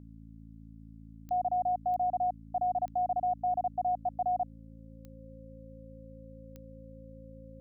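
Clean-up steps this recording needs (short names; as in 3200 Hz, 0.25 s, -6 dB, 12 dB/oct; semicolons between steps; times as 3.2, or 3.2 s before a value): de-click; de-hum 55.1 Hz, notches 5; notch 530 Hz, Q 30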